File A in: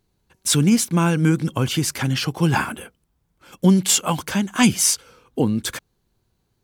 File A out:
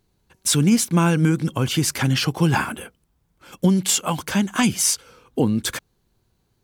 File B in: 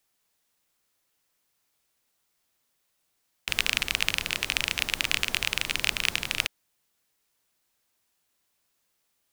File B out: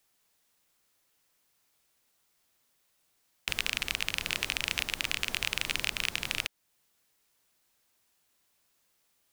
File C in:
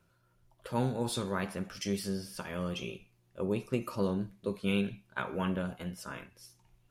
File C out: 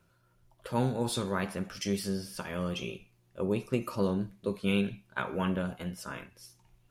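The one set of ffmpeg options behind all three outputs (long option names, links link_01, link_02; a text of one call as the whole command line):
ffmpeg -i in.wav -af "alimiter=limit=-10dB:level=0:latency=1:release=369,volume=2dB" out.wav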